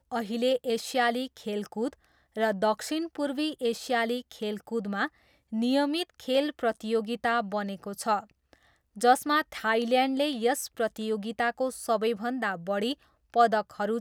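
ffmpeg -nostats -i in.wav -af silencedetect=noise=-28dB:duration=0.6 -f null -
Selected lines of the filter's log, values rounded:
silence_start: 8.19
silence_end: 9.02 | silence_duration: 0.83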